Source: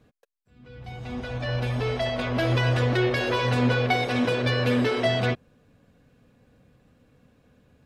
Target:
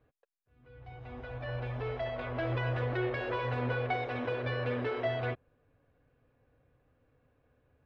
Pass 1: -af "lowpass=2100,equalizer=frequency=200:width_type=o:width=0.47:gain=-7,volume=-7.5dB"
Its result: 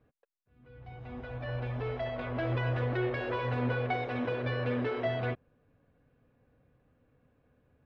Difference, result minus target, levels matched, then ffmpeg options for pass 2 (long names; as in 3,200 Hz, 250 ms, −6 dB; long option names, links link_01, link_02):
250 Hz band +2.5 dB
-af "lowpass=2100,equalizer=frequency=200:width_type=o:width=0.47:gain=-18.5,volume=-7.5dB"